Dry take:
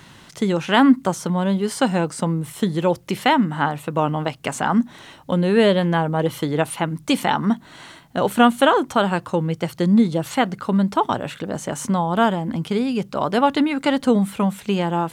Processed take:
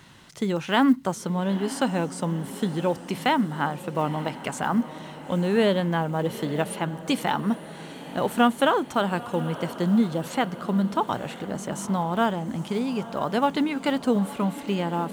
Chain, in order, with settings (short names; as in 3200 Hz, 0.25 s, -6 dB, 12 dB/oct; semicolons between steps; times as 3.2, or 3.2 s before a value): block floating point 7-bit; on a send: diffused feedback echo 0.934 s, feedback 55%, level -14.5 dB; on the sum: gain -5.5 dB